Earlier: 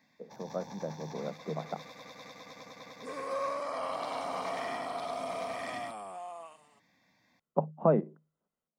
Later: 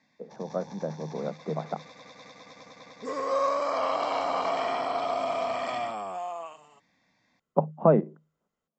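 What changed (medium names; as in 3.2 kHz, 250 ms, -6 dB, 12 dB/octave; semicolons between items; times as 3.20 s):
speech +5.0 dB; second sound +8.0 dB; master: add steep low-pass 7.7 kHz 96 dB/octave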